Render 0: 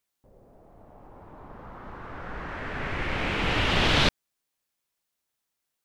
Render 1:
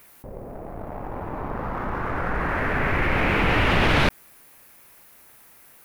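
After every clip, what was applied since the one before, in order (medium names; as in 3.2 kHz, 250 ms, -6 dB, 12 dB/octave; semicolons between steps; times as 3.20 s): waveshaping leveller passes 1; high-order bell 5 kHz -9 dB; level flattener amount 50%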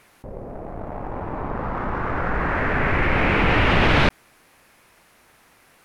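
distance through air 58 m; trim +2.5 dB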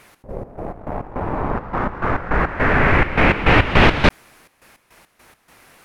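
trance gate "x.x.x.x.xx" 104 bpm -12 dB; trim +6 dB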